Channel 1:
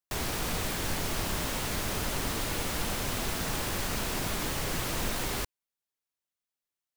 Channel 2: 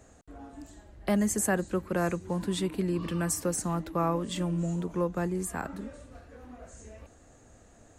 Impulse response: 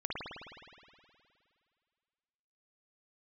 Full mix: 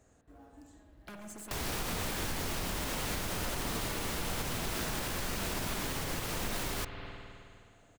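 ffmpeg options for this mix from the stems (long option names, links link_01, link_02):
-filter_complex "[0:a]adelay=1400,volume=0dB,asplit=2[link_01][link_02];[link_02]volume=-10dB[link_03];[1:a]aeval=exprs='0.0501*(abs(mod(val(0)/0.0501+3,4)-2)-1)':channel_layout=same,acompressor=threshold=-36dB:ratio=6,acrusher=bits=7:mode=log:mix=0:aa=0.000001,volume=-12.5dB,asplit=2[link_04][link_05];[link_05]volume=-4.5dB[link_06];[2:a]atrim=start_sample=2205[link_07];[link_03][link_06]amix=inputs=2:normalize=0[link_08];[link_08][link_07]afir=irnorm=-1:irlink=0[link_09];[link_01][link_04][link_09]amix=inputs=3:normalize=0,alimiter=level_in=1dB:limit=-24dB:level=0:latency=1:release=210,volume=-1dB"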